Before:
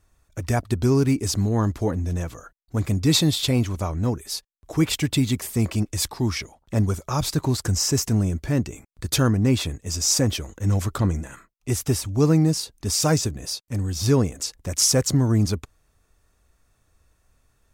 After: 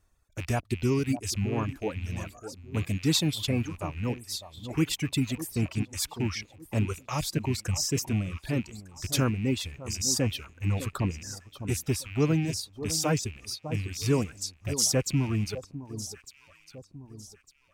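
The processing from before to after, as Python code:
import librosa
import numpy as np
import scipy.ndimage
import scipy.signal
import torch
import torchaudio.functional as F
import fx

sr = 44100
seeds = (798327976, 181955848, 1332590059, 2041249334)

y = fx.rattle_buzz(x, sr, strikes_db=-33.0, level_db=-22.0)
y = fx.echo_alternate(y, sr, ms=602, hz=1100.0, feedback_pct=55, wet_db=-9.0)
y = fx.dereverb_blind(y, sr, rt60_s=2.0)
y = y * librosa.db_to_amplitude(-5.5)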